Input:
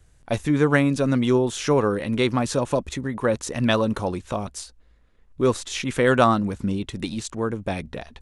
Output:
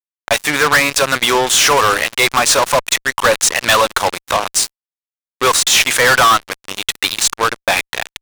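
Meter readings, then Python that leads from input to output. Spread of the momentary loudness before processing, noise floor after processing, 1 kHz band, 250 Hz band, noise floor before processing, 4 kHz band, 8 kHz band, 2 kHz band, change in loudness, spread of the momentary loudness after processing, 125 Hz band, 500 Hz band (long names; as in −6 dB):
11 LU, below −85 dBFS, +12.5 dB, −5.5 dB, −57 dBFS, +18.5 dB, +20.5 dB, +15.5 dB, +10.0 dB, 8 LU, −5.5 dB, +4.5 dB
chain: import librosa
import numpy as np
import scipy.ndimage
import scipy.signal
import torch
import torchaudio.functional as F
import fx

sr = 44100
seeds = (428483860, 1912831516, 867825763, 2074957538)

y = scipy.signal.sosfilt(scipy.signal.butter(2, 1100.0, 'highpass', fs=sr, output='sos'), x)
y = fx.fuzz(y, sr, gain_db=36.0, gate_db=-40.0)
y = y * librosa.db_to_amplitude(5.5)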